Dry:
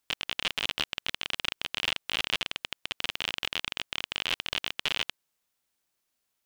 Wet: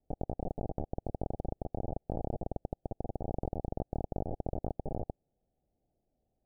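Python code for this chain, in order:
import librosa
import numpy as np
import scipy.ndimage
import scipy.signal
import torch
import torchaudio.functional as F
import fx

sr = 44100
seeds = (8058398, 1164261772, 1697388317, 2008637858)

p1 = scipy.signal.sosfilt(scipy.signal.butter(16, 800.0, 'lowpass', fs=sr, output='sos'), x)
p2 = fx.low_shelf(p1, sr, hz=140.0, db=11.5)
p3 = fx.over_compress(p2, sr, threshold_db=-44.0, ratio=-0.5)
p4 = p2 + F.gain(torch.from_numpy(p3), 1.5).numpy()
y = F.gain(torch.from_numpy(p4), 1.0).numpy()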